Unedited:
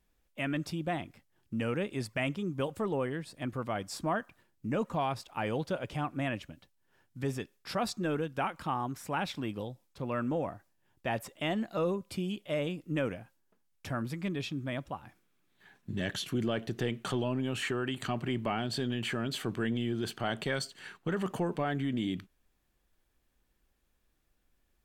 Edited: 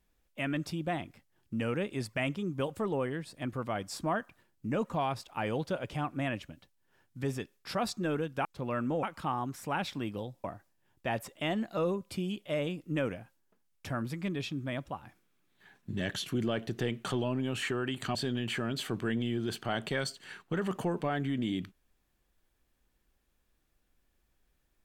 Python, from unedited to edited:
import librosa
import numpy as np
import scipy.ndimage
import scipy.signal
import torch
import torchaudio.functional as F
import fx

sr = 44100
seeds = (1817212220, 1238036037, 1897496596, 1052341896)

y = fx.edit(x, sr, fx.move(start_s=9.86, length_s=0.58, to_s=8.45),
    fx.cut(start_s=18.15, length_s=0.55), tone=tone)